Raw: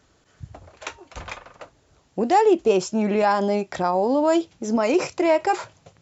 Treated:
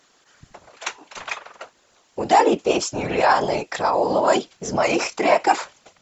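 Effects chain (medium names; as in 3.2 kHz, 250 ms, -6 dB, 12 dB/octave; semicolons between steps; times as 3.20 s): high-pass 950 Hz 6 dB/octave; whisper effect; trim +6.5 dB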